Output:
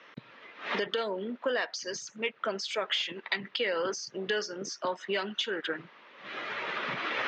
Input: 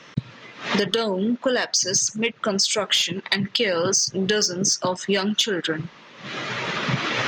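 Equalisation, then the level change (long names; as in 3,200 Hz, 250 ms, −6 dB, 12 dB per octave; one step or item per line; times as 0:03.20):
band-pass filter 520–3,300 Hz
parametric band 760 Hz −5.5 dB 2 octaves
high-shelf EQ 2,200 Hz −9.5 dB
0.0 dB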